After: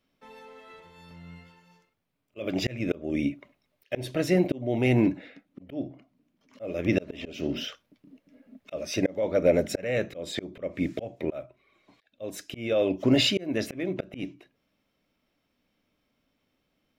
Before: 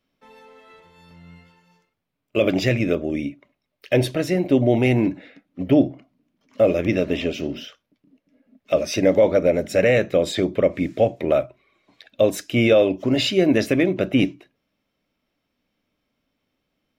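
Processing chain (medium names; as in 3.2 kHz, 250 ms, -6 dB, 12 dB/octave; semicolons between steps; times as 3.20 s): gain riding 0.5 s; slow attack 479 ms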